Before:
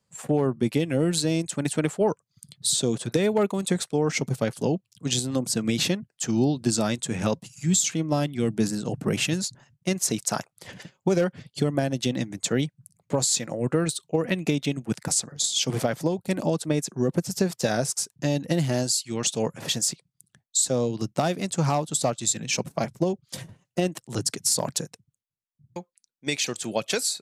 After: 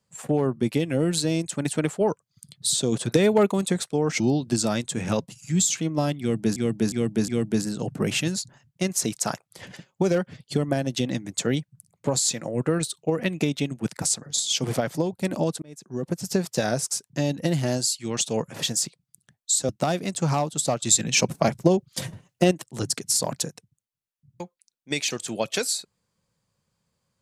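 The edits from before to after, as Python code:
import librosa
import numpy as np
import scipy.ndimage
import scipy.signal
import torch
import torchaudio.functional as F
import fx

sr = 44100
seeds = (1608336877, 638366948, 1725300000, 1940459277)

y = fx.edit(x, sr, fx.clip_gain(start_s=2.92, length_s=0.72, db=3.5),
    fx.cut(start_s=4.2, length_s=2.14),
    fx.repeat(start_s=8.34, length_s=0.36, count=4),
    fx.fade_in_span(start_s=16.68, length_s=0.72),
    fx.cut(start_s=20.75, length_s=0.3),
    fx.clip_gain(start_s=22.16, length_s=1.71, db=5.5), tone=tone)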